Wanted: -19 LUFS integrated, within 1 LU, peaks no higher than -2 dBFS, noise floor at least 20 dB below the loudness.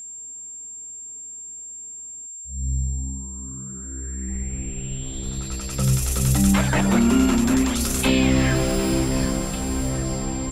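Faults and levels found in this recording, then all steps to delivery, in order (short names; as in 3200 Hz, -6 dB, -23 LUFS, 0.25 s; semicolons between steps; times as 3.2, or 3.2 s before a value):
steady tone 7400 Hz; tone level -34 dBFS; loudness -22.5 LUFS; peak -6.0 dBFS; loudness target -19.0 LUFS
-> notch 7400 Hz, Q 30; gain +3.5 dB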